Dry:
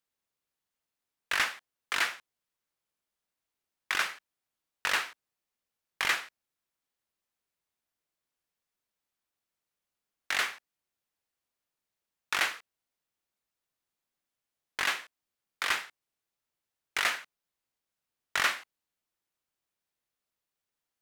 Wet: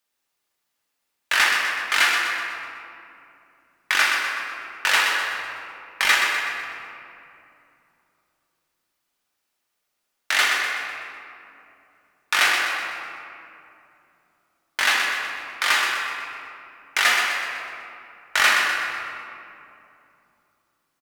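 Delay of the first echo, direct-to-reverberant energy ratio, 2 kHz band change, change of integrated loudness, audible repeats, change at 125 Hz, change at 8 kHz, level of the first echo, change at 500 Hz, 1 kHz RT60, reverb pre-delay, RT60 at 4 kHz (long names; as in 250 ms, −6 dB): 125 ms, −3.0 dB, +12.5 dB, +9.5 dB, 3, can't be measured, +11.0 dB, −6.5 dB, +10.0 dB, 2.6 s, 3 ms, 1.4 s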